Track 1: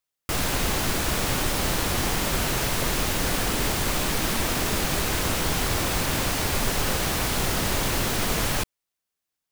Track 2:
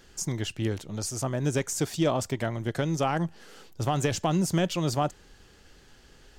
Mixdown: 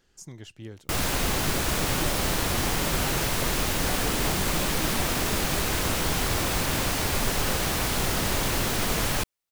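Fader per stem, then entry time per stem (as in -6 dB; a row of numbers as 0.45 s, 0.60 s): -1.0 dB, -12.0 dB; 0.60 s, 0.00 s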